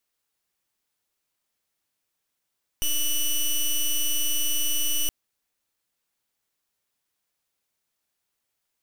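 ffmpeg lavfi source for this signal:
ffmpeg -f lavfi -i "aevalsrc='0.0708*(2*lt(mod(2960*t,1),0.11)-1)':duration=2.27:sample_rate=44100" out.wav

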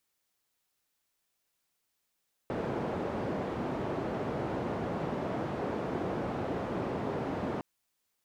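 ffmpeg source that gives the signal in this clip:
ffmpeg -f lavfi -i "anoisesrc=color=white:duration=5.11:sample_rate=44100:seed=1,highpass=frequency=100,lowpass=frequency=560,volume=-12.9dB" out.wav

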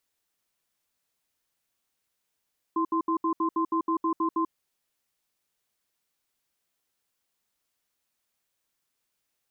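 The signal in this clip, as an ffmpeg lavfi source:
ffmpeg -f lavfi -i "aevalsrc='0.0531*(sin(2*PI*327*t)+sin(2*PI*1040*t))*clip(min(mod(t,0.16),0.09-mod(t,0.16))/0.005,0,1)':duration=1.69:sample_rate=44100" out.wav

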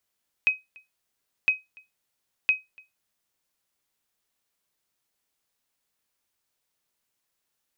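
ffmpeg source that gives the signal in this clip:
ffmpeg -f lavfi -i "aevalsrc='0.237*(sin(2*PI*2530*mod(t,1.01))*exp(-6.91*mod(t,1.01)/0.19)+0.0398*sin(2*PI*2530*max(mod(t,1.01)-0.29,0))*exp(-6.91*max(mod(t,1.01)-0.29,0)/0.19))':duration=3.03:sample_rate=44100" out.wav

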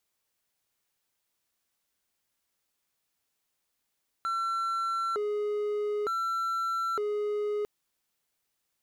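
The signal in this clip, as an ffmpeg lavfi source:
ffmpeg -f lavfi -i "aevalsrc='0.0531*(1-4*abs(mod((883.5*t+466.5/0.55*(0.5-abs(mod(0.55*t,1)-0.5)))+0.25,1)-0.5))':duration=3.4:sample_rate=44100" out.wav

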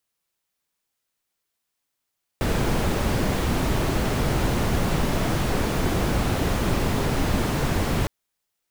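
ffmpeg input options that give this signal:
ffmpeg -f lavfi -i "anoisesrc=color=brown:amplitude=0.372:duration=5.66:sample_rate=44100:seed=1" out.wav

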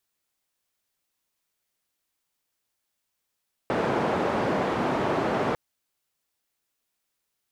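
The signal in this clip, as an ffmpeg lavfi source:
ffmpeg -f lavfi -i "anoisesrc=color=white:duration=1.85:sample_rate=44100:seed=1,highpass=frequency=140,lowpass=frequency=780,volume=-5.8dB" out.wav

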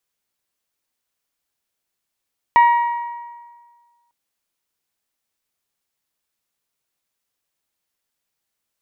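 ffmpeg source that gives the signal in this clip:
ffmpeg -f lavfi -i "aevalsrc='0.447*pow(10,-3*t/1.61)*sin(2*PI*949*t)+0.133*pow(10,-3*t/1.308)*sin(2*PI*1898*t)+0.0398*pow(10,-3*t/1.238)*sin(2*PI*2277.6*t)+0.0119*pow(10,-3*t/1.158)*sin(2*PI*2847*t)+0.00355*pow(10,-3*t/1.062)*sin(2*PI*3796*t)':duration=1.55:sample_rate=44100" out.wav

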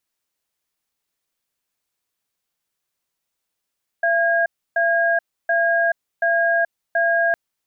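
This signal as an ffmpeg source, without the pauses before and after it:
ffmpeg -f lavfi -i "aevalsrc='0.126*(sin(2*PI*676*t)+sin(2*PI*1630*t))*clip(min(mod(t,0.73),0.43-mod(t,0.73))/0.005,0,1)':duration=3.31:sample_rate=44100" out.wav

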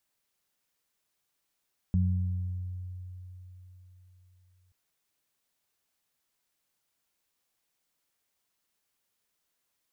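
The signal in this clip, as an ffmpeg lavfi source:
ffmpeg -f lavfi -i "aevalsrc='0.075*pow(10,-3*t/3.98)*sin(2*PI*91.2*t)+0.0531*pow(10,-3*t/1.43)*sin(2*PI*182.4*t)':duration=2.78:sample_rate=44100" out.wav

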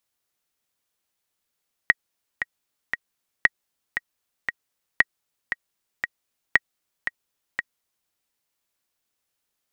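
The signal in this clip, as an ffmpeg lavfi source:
ffmpeg -f lavfi -i "aevalsrc='pow(10,(-1.5-10*gte(mod(t,3*60/116),60/116))/20)*sin(2*PI*1900*mod(t,60/116))*exp(-6.91*mod(t,60/116)/0.03)':duration=6.2:sample_rate=44100" out.wav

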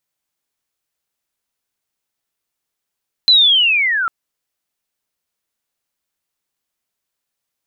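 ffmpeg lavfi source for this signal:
ffmpeg -f lavfi -i "aevalsrc='pow(10,(-6-9.5*t/0.8)/20)*sin(2*PI*(4100*t-2800*t*t/(2*0.8)))':duration=0.8:sample_rate=44100" out.wav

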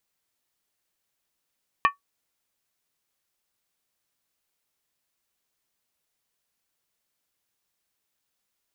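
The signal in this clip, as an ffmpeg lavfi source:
ffmpeg -f lavfi -i "aevalsrc='0.251*pow(10,-3*t/0.13)*sin(2*PI*1130*t)+0.141*pow(10,-3*t/0.103)*sin(2*PI*1801.2*t)+0.0794*pow(10,-3*t/0.089)*sin(2*PI*2413.7*t)+0.0447*pow(10,-3*t/0.086)*sin(2*PI*2594.5*t)+0.0251*pow(10,-3*t/0.08)*sin(2*PI*2997.9*t)':duration=0.63:sample_rate=44100" out.wav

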